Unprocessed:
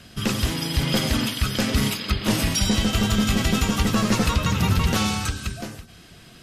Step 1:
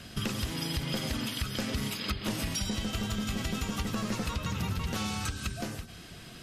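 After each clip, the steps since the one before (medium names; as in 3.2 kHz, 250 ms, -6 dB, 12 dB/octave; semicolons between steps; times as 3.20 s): compression 6:1, threshold -30 dBFS, peak gain reduction 14 dB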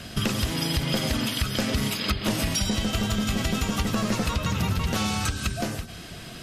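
peaking EQ 640 Hz +3.5 dB 0.34 oct; trim +7 dB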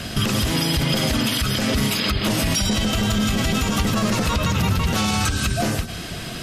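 peak limiter -20.5 dBFS, peak gain reduction 10 dB; trim +9 dB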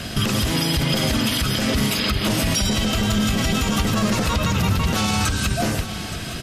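delay 870 ms -13.5 dB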